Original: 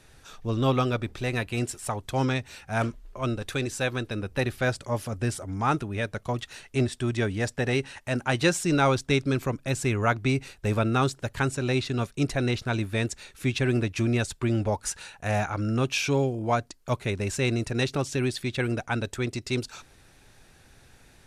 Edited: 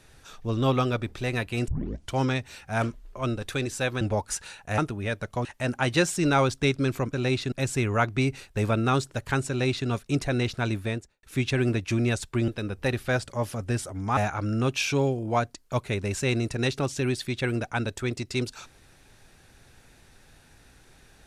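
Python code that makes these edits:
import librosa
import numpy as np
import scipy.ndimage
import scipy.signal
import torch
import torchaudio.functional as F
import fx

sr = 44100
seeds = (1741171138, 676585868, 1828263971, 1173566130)

y = fx.studio_fade_out(x, sr, start_s=12.84, length_s=0.47)
y = fx.edit(y, sr, fx.tape_start(start_s=1.68, length_s=0.46),
    fx.swap(start_s=4.01, length_s=1.69, other_s=14.56, other_length_s=0.77),
    fx.cut(start_s=6.37, length_s=1.55),
    fx.duplicate(start_s=11.57, length_s=0.39, to_s=9.6), tone=tone)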